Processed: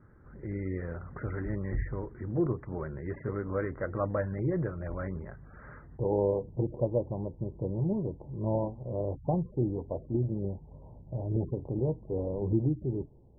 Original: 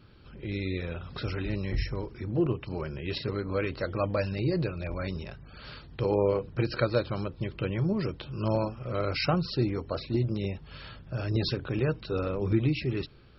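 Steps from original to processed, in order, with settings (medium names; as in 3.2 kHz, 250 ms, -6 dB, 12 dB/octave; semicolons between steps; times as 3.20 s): steep low-pass 2 kHz 96 dB/octave, from 5.97 s 960 Hz; trim -2 dB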